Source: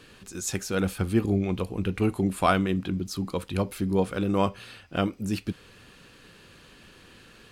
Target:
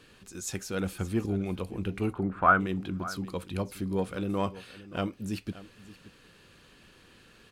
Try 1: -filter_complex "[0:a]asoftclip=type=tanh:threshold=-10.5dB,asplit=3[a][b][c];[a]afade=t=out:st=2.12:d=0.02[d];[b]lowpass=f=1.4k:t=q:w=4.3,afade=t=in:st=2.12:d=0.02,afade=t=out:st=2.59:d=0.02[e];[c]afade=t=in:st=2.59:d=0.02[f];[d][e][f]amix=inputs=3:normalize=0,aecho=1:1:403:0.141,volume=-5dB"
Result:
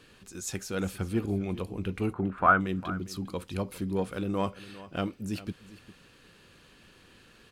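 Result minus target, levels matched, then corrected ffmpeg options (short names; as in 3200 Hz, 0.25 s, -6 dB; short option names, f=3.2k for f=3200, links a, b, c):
echo 0.173 s early
-filter_complex "[0:a]asoftclip=type=tanh:threshold=-10.5dB,asplit=3[a][b][c];[a]afade=t=out:st=2.12:d=0.02[d];[b]lowpass=f=1.4k:t=q:w=4.3,afade=t=in:st=2.12:d=0.02,afade=t=out:st=2.59:d=0.02[e];[c]afade=t=in:st=2.59:d=0.02[f];[d][e][f]amix=inputs=3:normalize=0,aecho=1:1:576:0.141,volume=-5dB"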